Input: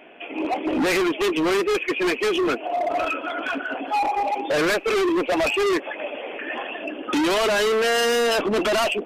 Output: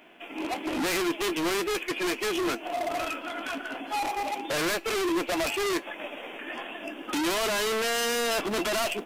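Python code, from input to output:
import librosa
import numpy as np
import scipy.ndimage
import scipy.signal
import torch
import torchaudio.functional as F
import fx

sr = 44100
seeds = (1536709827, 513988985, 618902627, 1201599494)

y = fx.envelope_flatten(x, sr, power=0.6)
y = fx.comb_fb(y, sr, f0_hz=340.0, decay_s=0.18, harmonics='all', damping=0.0, mix_pct=50)
y = y * librosa.db_to_amplitude(-2.0)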